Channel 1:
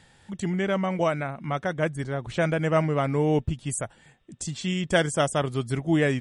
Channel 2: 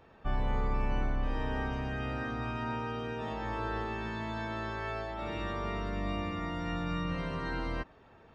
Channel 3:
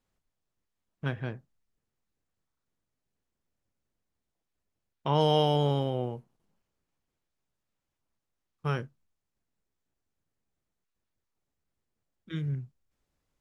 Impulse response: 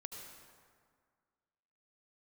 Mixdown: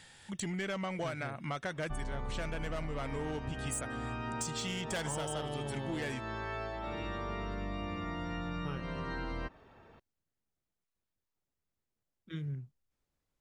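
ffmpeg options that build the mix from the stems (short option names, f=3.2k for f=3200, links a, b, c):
-filter_complex "[0:a]tiltshelf=f=1.2k:g=-5,asoftclip=type=tanh:threshold=-24dB,volume=-0.5dB[a];[1:a]adelay=1650,volume=-0.5dB[b];[2:a]volume=-5dB[c];[a][b][c]amix=inputs=3:normalize=0,acompressor=threshold=-34dB:ratio=6"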